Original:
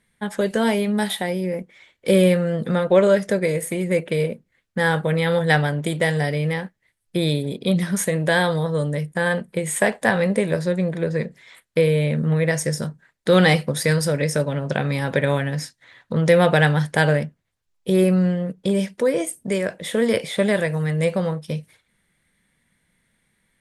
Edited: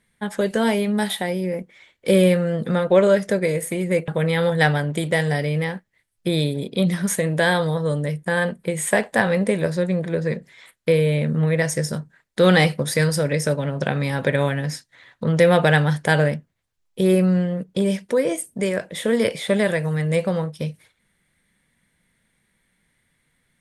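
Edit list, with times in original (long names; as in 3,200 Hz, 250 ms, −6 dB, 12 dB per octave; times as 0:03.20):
0:04.08–0:04.97: remove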